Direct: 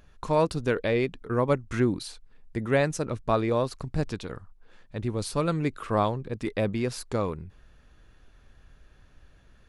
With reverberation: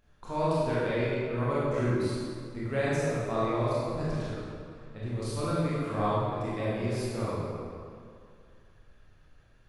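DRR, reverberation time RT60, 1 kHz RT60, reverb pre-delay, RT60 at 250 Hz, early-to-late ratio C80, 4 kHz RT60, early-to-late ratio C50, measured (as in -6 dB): -9.5 dB, 2.3 s, 2.3 s, 22 ms, 2.3 s, -2.0 dB, 1.6 s, -5.0 dB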